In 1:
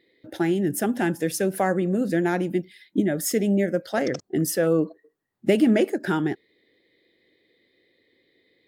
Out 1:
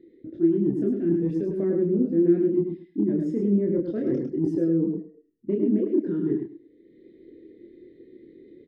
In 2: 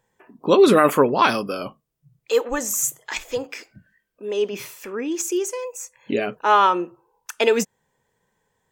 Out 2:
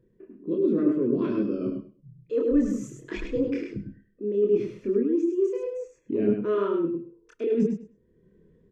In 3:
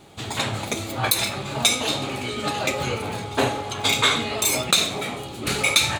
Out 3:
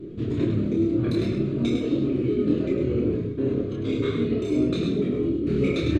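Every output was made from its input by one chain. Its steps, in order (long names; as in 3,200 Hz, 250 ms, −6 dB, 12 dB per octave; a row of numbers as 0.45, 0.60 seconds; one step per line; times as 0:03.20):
low shelf with overshoot 530 Hz +14 dB, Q 3
automatic gain control gain up to 3.5 dB
Butterworth band-reject 840 Hz, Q 5.1
head-to-tape spacing loss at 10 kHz 29 dB
reversed playback
downward compressor 10 to 1, threshold −18 dBFS
reversed playback
repeating echo 103 ms, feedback 17%, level −5 dB
multi-voice chorus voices 6, 0.37 Hz, delay 27 ms, depth 3.3 ms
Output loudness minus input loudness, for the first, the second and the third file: −0.5, −6.0, −2.0 LU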